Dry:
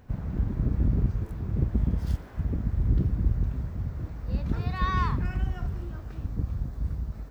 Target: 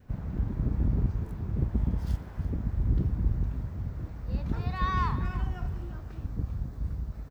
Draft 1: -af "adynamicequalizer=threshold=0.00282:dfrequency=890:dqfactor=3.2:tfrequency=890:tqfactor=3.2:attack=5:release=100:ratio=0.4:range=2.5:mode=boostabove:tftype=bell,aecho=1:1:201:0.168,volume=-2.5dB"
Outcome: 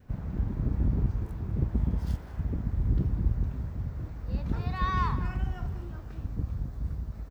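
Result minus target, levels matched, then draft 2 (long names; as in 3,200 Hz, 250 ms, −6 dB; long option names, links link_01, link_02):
echo 137 ms early
-af "adynamicequalizer=threshold=0.00282:dfrequency=890:dqfactor=3.2:tfrequency=890:tqfactor=3.2:attack=5:release=100:ratio=0.4:range=2.5:mode=boostabove:tftype=bell,aecho=1:1:338:0.168,volume=-2.5dB"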